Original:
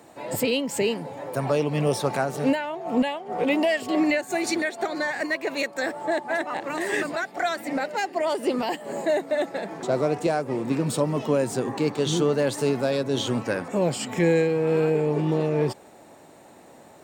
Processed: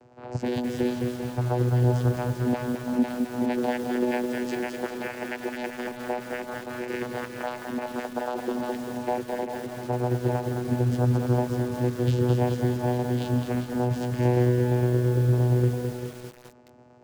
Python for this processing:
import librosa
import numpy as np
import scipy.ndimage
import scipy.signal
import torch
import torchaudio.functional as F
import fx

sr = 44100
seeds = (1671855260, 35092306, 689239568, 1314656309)

y = fx.vocoder(x, sr, bands=8, carrier='saw', carrier_hz=123.0)
y = fx.tremolo_shape(y, sr, shape='saw_down', hz=8.7, depth_pct=40)
y = y + 10.0 ** (-9.5 / 20.0) * np.pad(y, (int(395 * sr / 1000.0), 0))[:len(y)]
y = fx.echo_crushed(y, sr, ms=212, feedback_pct=55, bits=7, wet_db=-4.0)